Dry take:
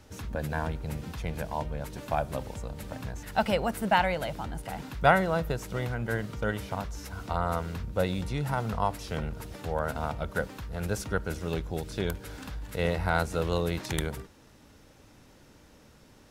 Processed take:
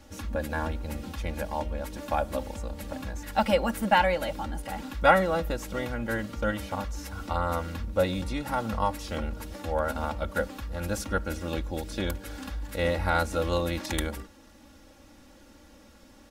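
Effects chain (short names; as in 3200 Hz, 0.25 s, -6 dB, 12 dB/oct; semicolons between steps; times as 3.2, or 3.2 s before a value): comb 3.6 ms, depth 81%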